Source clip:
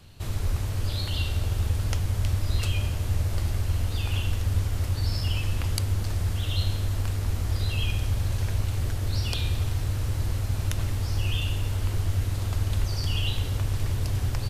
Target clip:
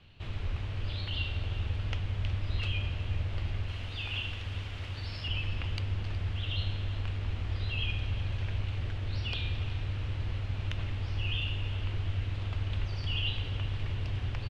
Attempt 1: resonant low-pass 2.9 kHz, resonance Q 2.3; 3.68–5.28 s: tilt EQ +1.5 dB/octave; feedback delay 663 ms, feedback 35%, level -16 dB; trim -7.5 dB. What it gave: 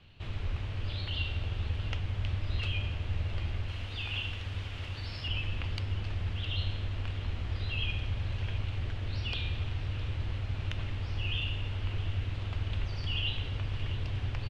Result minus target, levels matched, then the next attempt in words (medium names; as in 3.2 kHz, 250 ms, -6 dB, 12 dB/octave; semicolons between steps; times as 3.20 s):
echo 295 ms late
resonant low-pass 2.9 kHz, resonance Q 2.3; 3.68–5.28 s: tilt EQ +1.5 dB/octave; feedback delay 368 ms, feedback 35%, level -16 dB; trim -7.5 dB